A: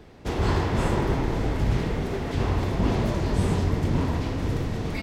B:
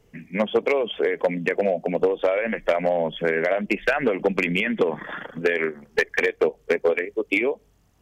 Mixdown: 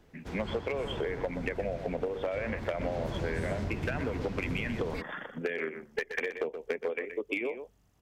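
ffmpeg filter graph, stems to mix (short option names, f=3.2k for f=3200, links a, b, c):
-filter_complex "[0:a]equalizer=f=1.5k:t=o:w=0.28:g=4.5,volume=-5dB,afade=t=in:st=2.72:d=0.4:silence=0.375837[a];[1:a]volume=-6.5dB,asplit=2[b][c];[c]volume=-12.5dB,aecho=0:1:124:1[d];[a][b][d]amix=inputs=3:normalize=0,acompressor=threshold=-29dB:ratio=6"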